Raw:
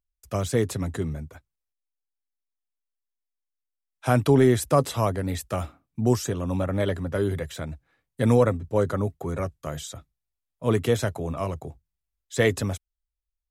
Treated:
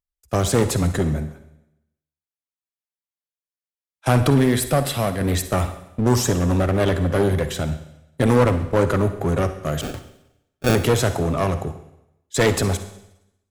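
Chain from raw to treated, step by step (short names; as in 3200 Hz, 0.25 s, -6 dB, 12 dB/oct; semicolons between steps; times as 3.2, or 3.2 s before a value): gate -38 dBFS, range -15 dB; 4.3–5.21 fifteen-band EQ 100 Hz -10 dB, 400 Hz -11 dB, 1000 Hz -11 dB, 6300 Hz -8 dB; in parallel at -3 dB: limiter -19 dBFS, peak gain reduction 10.5 dB; on the sum: one-sided clip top -24.5 dBFS, bottom -12.5 dBFS; 9.81–10.75 sample-rate reducer 1000 Hz, jitter 0%; on a send at -10 dB: reverb RT60 0.85 s, pre-delay 45 ms; on the sum: gain +5 dB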